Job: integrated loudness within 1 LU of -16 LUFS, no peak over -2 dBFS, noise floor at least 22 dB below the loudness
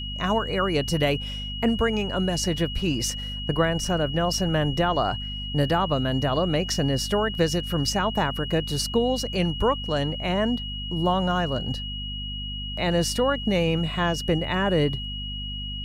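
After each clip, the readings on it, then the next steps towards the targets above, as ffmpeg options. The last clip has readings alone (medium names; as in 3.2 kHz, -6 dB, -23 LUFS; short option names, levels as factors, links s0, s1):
hum 50 Hz; highest harmonic 250 Hz; hum level -32 dBFS; steady tone 2.9 kHz; tone level -33 dBFS; loudness -25.0 LUFS; peak level -8.5 dBFS; loudness target -16.0 LUFS
-> -af "bandreject=f=50:t=h:w=6,bandreject=f=100:t=h:w=6,bandreject=f=150:t=h:w=6,bandreject=f=200:t=h:w=6,bandreject=f=250:t=h:w=6"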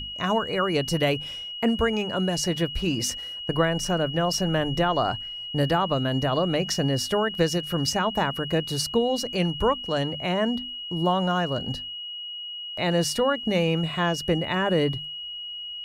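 hum not found; steady tone 2.9 kHz; tone level -33 dBFS
-> -af "bandreject=f=2900:w=30"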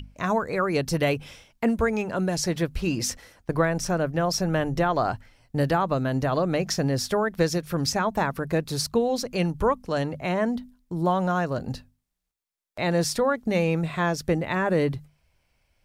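steady tone not found; loudness -25.5 LUFS; peak level -9.0 dBFS; loudness target -16.0 LUFS
-> -af "volume=2.99,alimiter=limit=0.794:level=0:latency=1"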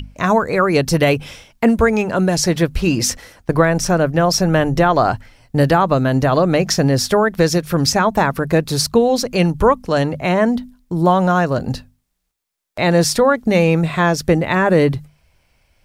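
loudness -16.0 LUFS; peak level -2.0 dBFS; noise floor -66 dBFS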